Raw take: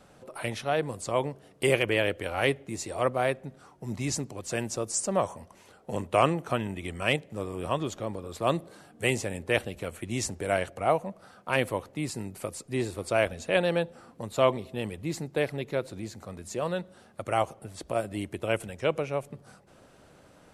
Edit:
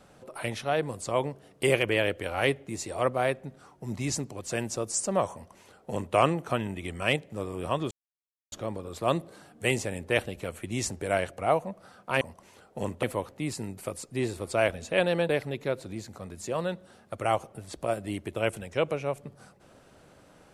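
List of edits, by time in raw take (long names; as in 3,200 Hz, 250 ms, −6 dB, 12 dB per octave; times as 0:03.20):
0:05.33–0:06.15: duplicate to 0:11.60
0:07.91: splice in silence 0.61 s
0:13.86–0:15.36: remove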